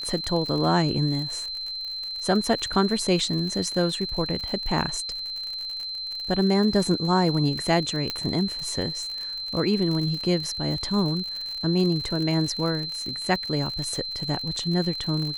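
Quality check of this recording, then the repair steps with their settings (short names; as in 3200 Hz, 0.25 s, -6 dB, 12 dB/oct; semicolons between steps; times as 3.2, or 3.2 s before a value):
crackle 58/s -30 dBFS
tone 4100 Hz -30 dBFS
8.1 pop -12 dBFS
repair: de-click; notch 4100 Hz, Q 30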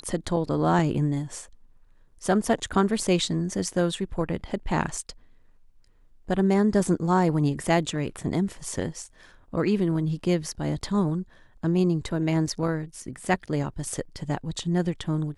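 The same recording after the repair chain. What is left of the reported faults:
none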